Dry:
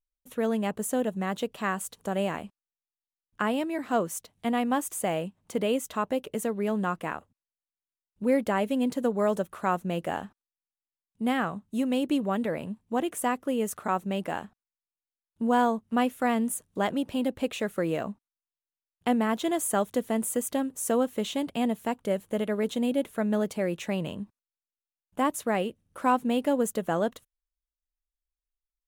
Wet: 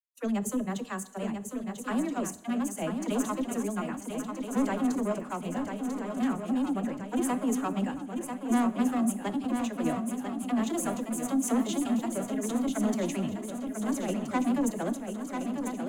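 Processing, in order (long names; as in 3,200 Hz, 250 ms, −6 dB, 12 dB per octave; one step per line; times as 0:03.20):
noise gate −49 dBFS, range −29 dB
notch filter 5,600 Hz, Q 11
noise reduction from a noise print of the clip's start 17 dB
graphic EQ with 15 bands 100 Hz +4 dB, 250 Hz +9 dB, 6,300 Hz +11 dB
phase-vocoder stretch with locked phases 0.55×
soft clipping −20.5 dBFS, distortion −11 dB
all-pass dispersion lows, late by 47 ms, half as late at 360 Hz
shaped tremolo saw down 0.71 Hz, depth 50%
feedback echo with a long and a short gap by turns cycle 1,325 ms, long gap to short 3 to 1, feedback 52%, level −6.5 dB
on a send at −13 dB: convolution reverb, pre-delay 3 ms
on the sum: level −1 dB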